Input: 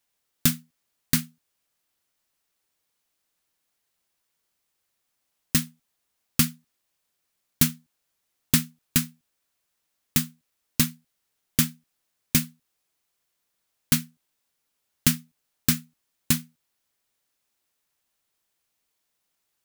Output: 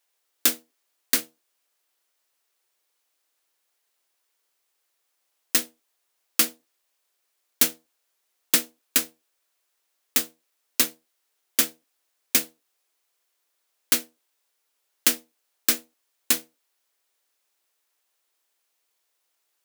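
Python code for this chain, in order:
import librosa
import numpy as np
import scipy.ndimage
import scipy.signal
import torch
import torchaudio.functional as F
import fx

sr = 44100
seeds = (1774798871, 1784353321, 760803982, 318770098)

y = fx.octave_divider(x, sr, octaves=1, level_db=1.0)
y = scipy.signal.sosfilt(scipy.signal.butter(4, 350.0, 'highpass', fs=sr, output='sos'), y)
y = y * 10.0 ** (2.5 / 20.0)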